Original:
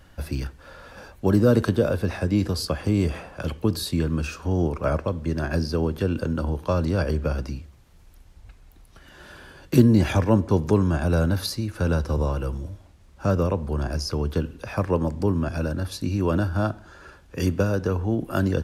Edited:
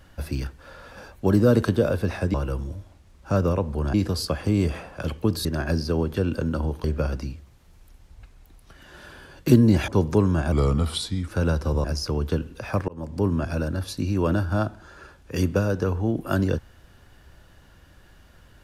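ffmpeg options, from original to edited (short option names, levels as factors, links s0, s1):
-filter_complex "[0:a]asplit=10[s0][s1][s2][s3][s4][s5][s6][s7][s8][s9];[s0]atrim=end=2.342[s10];[s1]atrim=start=12.278:end=13.882[s11];[s2]atrim=start=2.338:end=3.852[s12];[s3]atrim=start=5.288:end=6.682[s13];[s4]atrim=start=7.098:end=10.142[s14];[s5]atrim=start=10.438:end=11.084[s15];[s6]atrim=start=11.08:end=11.72,asetpts=PTS-STARTPTS,asetrate=37044,aresample=44100[s16];[s7]atrim=start=11.716:end=12.282[s17];[s8]atrim=start=13.878:end=14.92,asetpts=PTS-STARTPTS,afade=t=out:st=1.038:d=0.004:c=hsin[s18];[s9]atrim=start=14.92,asetpts=PTS-STARTPTS,afade=t=in:d=0.37[s19];[s10][s11]acrossfade=d=0.004:c1=hsin:c2=hsin[s20];[s20][s12]acrossfade=d=0.004:c1=hsin:c2=hsin[s21];[s21][s13]acrossfade=d=0.004:c1=hsin:c2=hsin[s22];[s22][s14]acrossfade=d=0.004:c1=hsin:c2=hsin[s23];[s23][s15]acrossfade=d=0.004:c1=hsin:c2=hsin[s24];[s24][s16]acrossfade=d=0.004:c1=hsin:c2=hsin[s25];[s25][s17]acrossfade=d=0.004:c1=hsin:c2=hsin[s26];[s18][s19]concat=n=2:v=0:a=1[s27];[s26][s27]acrossfade=d=0.004:c1=hsin:c2=hsin"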